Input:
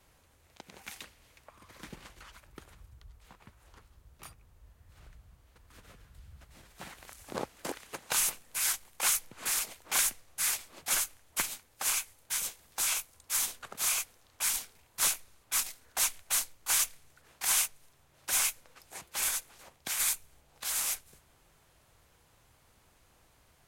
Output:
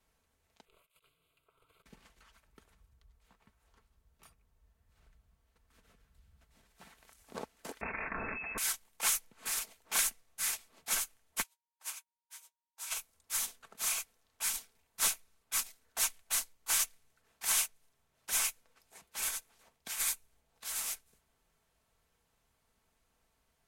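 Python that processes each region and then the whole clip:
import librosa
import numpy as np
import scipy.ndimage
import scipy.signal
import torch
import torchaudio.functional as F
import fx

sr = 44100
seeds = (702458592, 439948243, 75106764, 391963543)

y = fx.chain(x, sr, fx.ring_mod(carrier_hz=200.0),
    fx.over_compress(threshold_db=-55.0, ratio=-0.5),
    fx.fixed_phaser(hz=1200.0, stages=8), at=(0.65, 1.86))
y = fx.chain(y, sr, fx.freq_invert(carrier_hz=2600),
    fx.env_flatten(amount_pct=100), at=(7.81, 8.58))
y = fx.highpass(y, sr, hz=570.0, slope=12, at=(11.42, 12.9), fade=0.02)
y = fx.dmg_tone(y, sr, hz=940.0, level_db=-49.0, at=(11.42, 12.9), fade=0.02)
y = fx.upward_expand(y, sr, threshold_db=-49.0, expansion=2.5, at=(11.42, 12.9), fade=0.02)
y = y + 0.41 * np.pad(y, (int(4.5 * sr / 1000.0), 0))[:len(y)]
y = fx.upward_expand(y, sr, threshold_db=-43.0, expansion=1.5)
y = F.gain(torch.from_numpy(y), -2.5).numpy()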